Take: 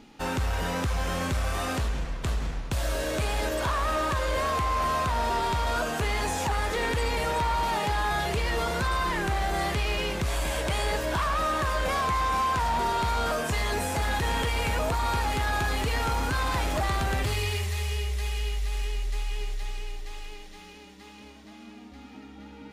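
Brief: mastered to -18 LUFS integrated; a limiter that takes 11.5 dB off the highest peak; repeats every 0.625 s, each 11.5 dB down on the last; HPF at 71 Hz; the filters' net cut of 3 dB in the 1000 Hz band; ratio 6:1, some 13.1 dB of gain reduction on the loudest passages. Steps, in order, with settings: HPF 71 Hz; bell 1000 Hz -3.5 dB; compressor 6:1, threshold -40 dBFS; limiter -37.5 dBFS; feedback echo 0.625 s, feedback 27%, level -11.5 dB; gain +27.5 dB

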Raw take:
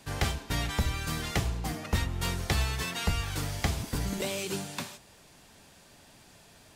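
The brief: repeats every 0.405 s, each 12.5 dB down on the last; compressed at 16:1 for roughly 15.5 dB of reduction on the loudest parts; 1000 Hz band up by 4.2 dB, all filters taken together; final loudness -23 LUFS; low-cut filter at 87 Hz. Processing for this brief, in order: HPF 87 Hz; bell 1000 Hz +5.5 dB; compressor 16:1, threshold -39 dBFS; feedback echo 0.405 s, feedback 24%, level -12.5 dB; gain +21 dB

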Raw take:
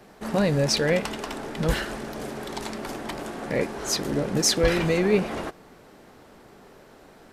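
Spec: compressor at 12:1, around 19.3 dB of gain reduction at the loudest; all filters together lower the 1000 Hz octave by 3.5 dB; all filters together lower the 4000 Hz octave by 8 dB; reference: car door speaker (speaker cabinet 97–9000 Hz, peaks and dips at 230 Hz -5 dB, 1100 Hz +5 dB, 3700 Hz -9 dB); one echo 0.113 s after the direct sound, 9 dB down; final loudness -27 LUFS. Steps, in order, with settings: bell 1000 Hz -6.5 dB; bell 4000 Hz -8 dB; compressor 12:1, threshold -36 dBFS; speaker cabinet 97–9000 Hz, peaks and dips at 230 Hz -5 dB, 1100 Hz +5 dB, 3700 Hz -9 dB; echo 0.113 s -9 dB; gain +14 dB

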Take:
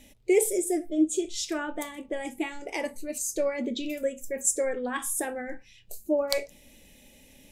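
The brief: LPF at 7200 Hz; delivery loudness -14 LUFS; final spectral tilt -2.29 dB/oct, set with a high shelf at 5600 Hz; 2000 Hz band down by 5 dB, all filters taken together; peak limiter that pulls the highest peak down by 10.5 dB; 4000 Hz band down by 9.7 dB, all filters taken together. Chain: LPF 7200 Hz; bell 2000 Hz -3.5 dB; bell 4000 Hz -8.5 dB; high shelf 5600 Hz -5.5 dB; gain +19.5 dB; limiter -3 dBFS

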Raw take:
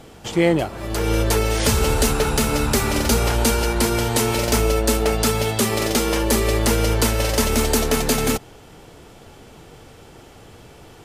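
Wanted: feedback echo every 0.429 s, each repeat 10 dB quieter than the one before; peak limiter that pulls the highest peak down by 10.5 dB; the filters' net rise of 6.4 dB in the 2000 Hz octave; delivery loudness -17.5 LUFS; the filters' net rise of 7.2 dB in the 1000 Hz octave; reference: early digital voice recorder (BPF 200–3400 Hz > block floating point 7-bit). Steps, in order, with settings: bell 1000 Hz +7.5 dB; bell 2000 Hz +6.5 dB; limiter -12 dBFS; BPF 200–3400 Hz; feedback echo 0.429 s, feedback 32%, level -10 dB; block floating point 7-bit; gain +5.5 dB

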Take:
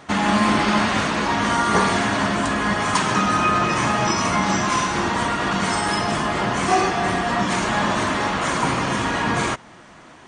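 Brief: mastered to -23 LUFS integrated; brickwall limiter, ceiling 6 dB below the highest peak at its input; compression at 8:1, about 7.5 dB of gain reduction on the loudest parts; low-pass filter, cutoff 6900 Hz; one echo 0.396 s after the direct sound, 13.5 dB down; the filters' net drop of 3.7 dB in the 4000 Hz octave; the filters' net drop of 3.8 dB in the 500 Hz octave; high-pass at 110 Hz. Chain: HPF 110 Hz; LPF 6900 Hz; bell 500 Hz -5.5 dB; bell 4000 Hz -4.5 dB; compressor 8:1, threshold -23 dBFS; limiter -19.5 dBFS; echo 0.396 s -13.5 dB; gain +5 dB

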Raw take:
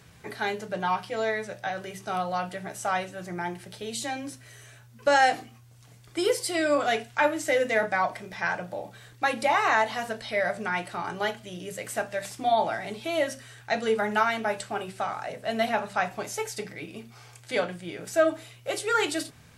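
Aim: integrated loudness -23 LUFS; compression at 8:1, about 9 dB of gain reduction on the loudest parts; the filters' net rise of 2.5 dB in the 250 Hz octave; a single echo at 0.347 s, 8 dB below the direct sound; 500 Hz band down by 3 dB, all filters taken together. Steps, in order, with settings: bell 250 Hz +5 dB; bell 500 Hz -5 dB; compressor 8:1, threshold -27 dBFS; echo 0.347 s -8 dB; gain +10 dB

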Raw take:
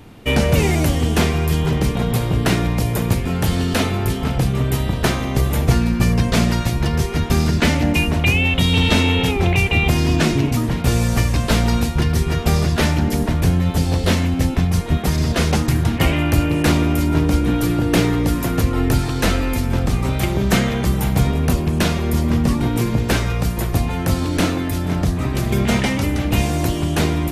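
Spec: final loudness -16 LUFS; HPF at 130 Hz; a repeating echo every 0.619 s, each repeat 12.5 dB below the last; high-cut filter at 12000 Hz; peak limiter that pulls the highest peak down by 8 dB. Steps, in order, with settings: HPF 130 Hz; LPF 12000 Hz; limiter -11 dBFS; feedback echo 0.619 s, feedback 24%, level -12.5 dB; gain +5.5 dB

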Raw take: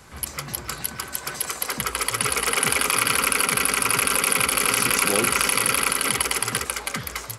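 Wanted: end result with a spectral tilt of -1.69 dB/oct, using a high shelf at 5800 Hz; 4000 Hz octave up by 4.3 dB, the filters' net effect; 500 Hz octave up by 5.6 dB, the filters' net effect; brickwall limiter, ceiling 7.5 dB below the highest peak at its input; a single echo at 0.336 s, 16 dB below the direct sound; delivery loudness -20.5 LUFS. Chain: bell 500 Hz +6.5 dB; bell 4000 Hz +4 dB; high shelf 5800 Hz +4.5 dB; limiter -9.5 dBFS; echo 0.336 s -16 dB; gain +1 dB

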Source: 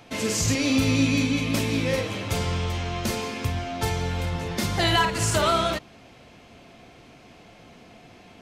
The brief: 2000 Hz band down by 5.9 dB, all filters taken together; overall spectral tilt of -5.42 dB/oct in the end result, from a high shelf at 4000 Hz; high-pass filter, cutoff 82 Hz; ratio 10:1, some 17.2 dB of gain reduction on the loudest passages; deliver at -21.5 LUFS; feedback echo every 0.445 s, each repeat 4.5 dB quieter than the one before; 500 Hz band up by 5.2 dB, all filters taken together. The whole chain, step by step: HPF 82 Hz; bell 500 Hz +7 dB; bell 2000 Hz -6.5 dB; high shelf 4000 Hz -5.5 dB; compressor 10:1, threshold -34 dBFS; feedback echo 0.445 s, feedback 60%, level -4.5 dB; gain +15.5 dB

